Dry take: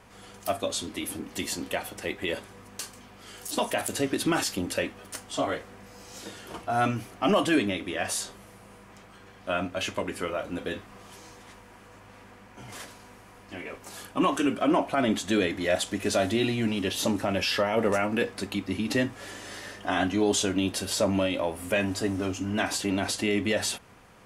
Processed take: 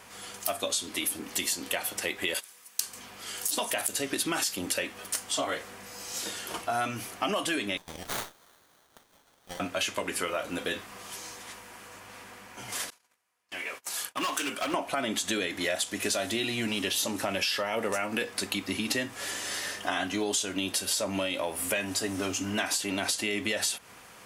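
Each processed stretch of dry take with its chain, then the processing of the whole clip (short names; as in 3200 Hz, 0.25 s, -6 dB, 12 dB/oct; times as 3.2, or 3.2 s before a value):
2.34–2.8 gate -40 dBFS, range -15 dB + tilt +4 dB/oct
7.77–9.6 brick-wall FIR high-pass 2400 Hz + running maximum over 17 samples
12.9–14.74 gate -47 dBFS, range -30 dB + low shelf 450 Hz -11.5 dB + overloaded stage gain 28 dB
whole clip: tilt +2.5 dB/oct; compressor, threshold -30 dBFS; gain +3.5 dB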